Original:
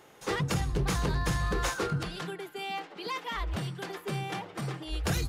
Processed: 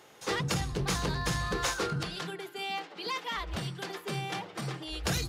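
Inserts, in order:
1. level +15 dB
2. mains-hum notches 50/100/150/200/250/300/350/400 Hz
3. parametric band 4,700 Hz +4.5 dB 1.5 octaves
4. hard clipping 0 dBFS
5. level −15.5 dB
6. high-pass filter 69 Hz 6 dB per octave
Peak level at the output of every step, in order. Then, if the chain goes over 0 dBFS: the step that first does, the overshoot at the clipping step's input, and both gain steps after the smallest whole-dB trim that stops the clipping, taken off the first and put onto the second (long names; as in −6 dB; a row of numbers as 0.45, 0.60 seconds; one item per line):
−6.0, −5.0, −3.5, −3.5, −19.0, −18.5 dBFS
no step passes full scale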